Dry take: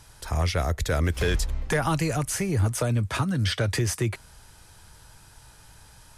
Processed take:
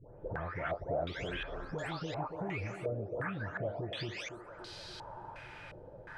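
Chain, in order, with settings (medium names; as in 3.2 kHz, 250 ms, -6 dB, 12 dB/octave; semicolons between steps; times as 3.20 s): delay that grows with frequency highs late, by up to 464 ms; bass shelf 75 Hz -11 dB; compression 5:1, threshold -44 dBFS, peak gain reduction 19.5 dB; band-passed feedback delay 285 ms, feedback 79%, band-pass 560 Hz, level -5.5 dB; step-sequenced low-pass 2.8 Hz 510–4300 Hz; trim +4 dB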